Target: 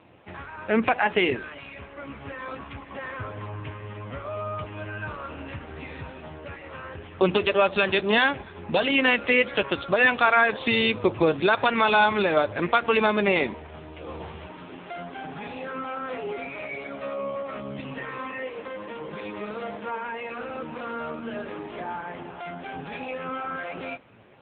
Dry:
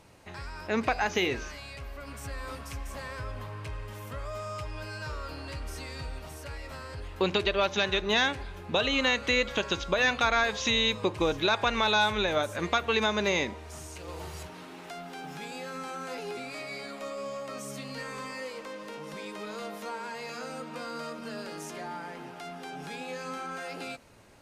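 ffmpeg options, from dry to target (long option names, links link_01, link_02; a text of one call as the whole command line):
ffmpeg -i in.wav -af "volume=7dB" -ar 8000 -c:a libopencore_amrnb -b:a 5900 out.amr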